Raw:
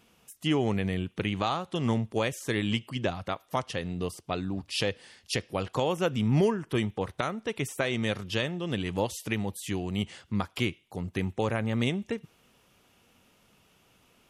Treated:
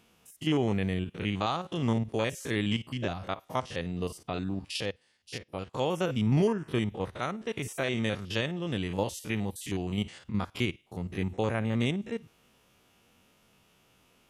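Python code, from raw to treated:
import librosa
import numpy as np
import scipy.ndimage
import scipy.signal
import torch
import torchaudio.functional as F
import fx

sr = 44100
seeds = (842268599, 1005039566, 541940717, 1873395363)

y = fx.spec_steps(x, sr, hold_ms=50)
y = fx.upward_expand(y, sr, threshold_db=-52.0, expansion=1.5, at=(4.76, 5.78), fade=0.02)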